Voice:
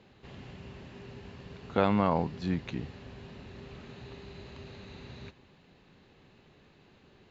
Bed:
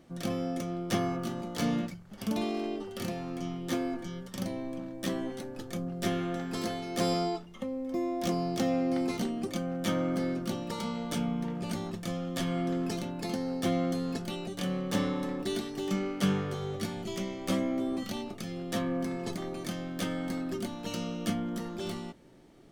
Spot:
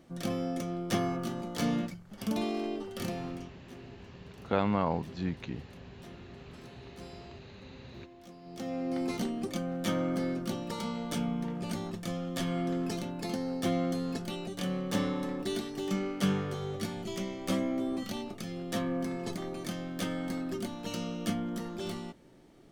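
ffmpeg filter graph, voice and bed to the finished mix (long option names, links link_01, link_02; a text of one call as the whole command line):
ffmpeg -i stem1.wav -i stem2.wav -filter_complex "[0:a]adelay=2750,volume=-2.5dB[link_01];[1:a]volume=19.5dB,afade=type=out:start_time=3.27:duration=0.24:silence=0.0944061,afade=type=in:start_time=8.41:duration=0.74:silence=0.1[link_02];[link_01][link_02]amix=inputs=2:normalize=0" out.wav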